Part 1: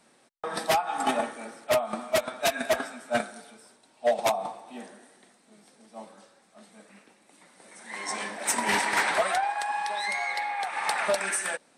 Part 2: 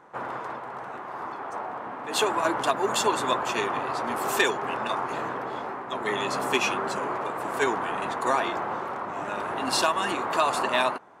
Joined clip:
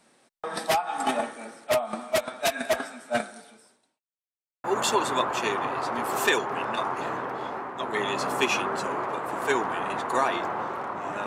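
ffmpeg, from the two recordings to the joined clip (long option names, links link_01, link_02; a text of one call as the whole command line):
ffmpeg -i cue0.wav -i cue1.wav -filter_complex "[0:a]apad=whole_dur=11.26,atrim=end=11.26,asplit=2[link_01][link_02];[link_01]atrim=end=4,asetpts=PTS-STARTPTS,afade=type=out:start_time=3.24:duration=0.76:curve=qsin[link_03];[link_02]atrim=start=4:end=4.64,asetpts=PTS-STARTPTS,volume=0[link_04];[1:a]atrim=start=2.76:end=9.38,asetpts=PTS-STARTPTS,afade=type=in:duration=0.004:curve=hsin[link_05];[link_03][link_04][link_05]concat=n=3:v=0:a=1" out.wav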